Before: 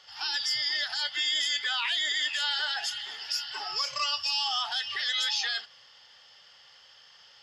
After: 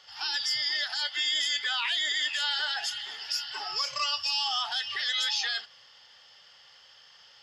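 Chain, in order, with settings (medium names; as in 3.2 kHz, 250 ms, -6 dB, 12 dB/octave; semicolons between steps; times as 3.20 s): 0.57–1.23 s: high-pass 91 Hz -> 290 Hz 12 dB/octave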